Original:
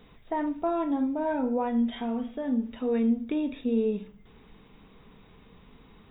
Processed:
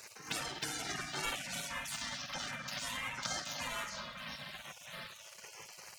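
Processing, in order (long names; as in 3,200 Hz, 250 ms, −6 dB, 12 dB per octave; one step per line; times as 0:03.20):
lower of the sound and its delayed copy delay 5 ms
mains-hum notches 50/100/150/200/250/300 Hz
echo through a band-pass that steps 620 ms, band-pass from 160 Hz, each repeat 1.4 octaves, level −8 dB
dynamic equaliser 310 Hz, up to −7 dB, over −39 dBFS, Q 0.89
phaser swept by the level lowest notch 300 Hz, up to 2,800 Hz, full sweep at −28 dBFS
in parallel at −3.5 dB: soft clipping −32 dBFS, distortion −12 dB
on the sum: time stretch by overlap-add 1.7×, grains 32 ms
comb and all-pass reverb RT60 2.3 s, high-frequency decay 0.45×, pre-delay 35 ms, DRR 11 dB
gate on every frequency bin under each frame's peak −25 dB weak
wrong playback speed 45 rpm record played at 78 rpm
multiband upward and downward compressor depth 40%
level +11.5 dB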